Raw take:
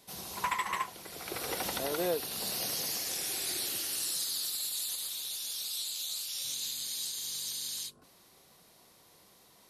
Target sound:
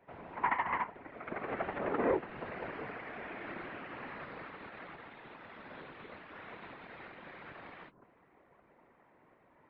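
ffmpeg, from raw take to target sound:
-af "aeval=exprs='0.126*(cos(1*acos(clip(val(0)/0.126,-1,1)))-cos(1*PI/2))+0.0282*(cos(4*acos(clip(val(0)/0.126,-1,1)))-cos(4*PI/2))+0.01*(cos(8*acos(clip(val(0)/0.126,-1,1)))-cos(8*PI/2))':c=same,highpass=f=200:t=q:w=0.5412,highpass=f=200:t=q:w=1.307,lowpass=f=2200:t=q:w=0.5176,lowpass=f=2200:t=q:w=0.7071,lowpass=f=2200:t=q:w=1.932,afreqshift=-51,afftfilt=real='hypot(re,im)*cos(2*PI*random(0))':imag='hypot(re,im)*sin(2*PI*random(1))':win_size=512:overlap=0.75,volume=2.11"

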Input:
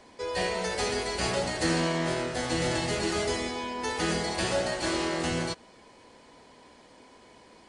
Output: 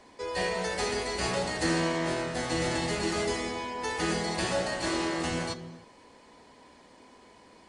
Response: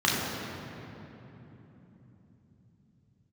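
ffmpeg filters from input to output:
-filter_complex "[0:a]asplit=2[s0][s1];[1:a]atrim=start_sample=2205,afade=t=out:st=0.37:d=0.01,atrim=end_sample=16758[s2];[s1][s2]afir=irnorm=-1:irlink=0,volume=0.0562[s3];[s0][s3]amix=inputs=2:normalize=0,volume=0.794"

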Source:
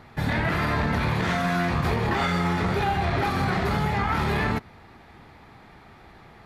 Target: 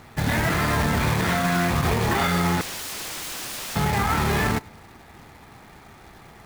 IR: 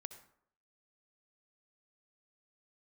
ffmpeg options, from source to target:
-filter_complex "[0:a]asettb=1/sr,asplit=3[s0][s1][s2];[s0]atrim=end=2.614[s3];[s1]atrim=start=2.61:end=3.76,asetpts=PTS-STARTPTS,afade=t=in:d=0.004:c=qsin,afade=t=out:st=1.146:d=0.004:c=qsin,aeval=exprs='(mod(33.5*val(0)+1,2)-1)/33.5':c=same[s4];[s2]atrim=start=3.756[s5];[s3][s4]acrossfade=d=0.004:c1=hsin:c2=qsin[s6];[s6][s5]acrossfade=d=0.004:c1=qsin:c2=hsin,acrusher=bits=2:mode=log:mix=0:aa=0.000001,asplit=2[s7][s8];[1:a]atrim=start_sample=2205[s9];[s8][s9]afir=irnorm=-1:irlink=0,volume=0.398[s10];[s7][s10]amix=inputs=2:normalize=0"

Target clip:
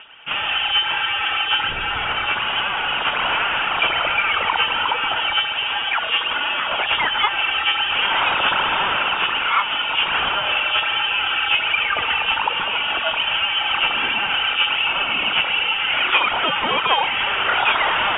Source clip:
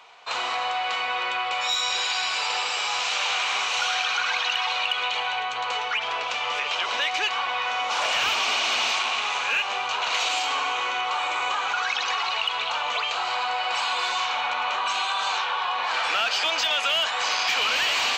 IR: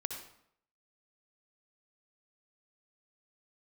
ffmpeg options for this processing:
-af "aphaser=in_gain=1:out_gain=1:delay=5:decay=0.51:speed=1.3:type=sinusoidal,lowshelf=f=320:g=3.5,lowpass=f=3200:t=q:w=0.5098,lowpass=f=3200:t=q:w=0.6013,lowpass=f=3200:t=q:w=0.9,lowpass=f=3200:t=q:w=2.563,afreqshift=-3800,volume=1.68"

